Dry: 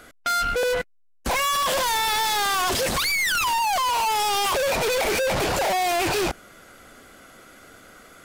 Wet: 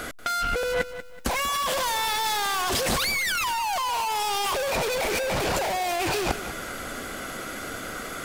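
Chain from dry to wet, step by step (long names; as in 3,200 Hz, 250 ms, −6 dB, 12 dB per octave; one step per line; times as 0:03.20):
compressor whose output falls as the input rises −31 dBFS, ratio −1
feedback echo at a low word length 188 ms, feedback 35%, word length 9 bits, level −12 dB
level +5 dB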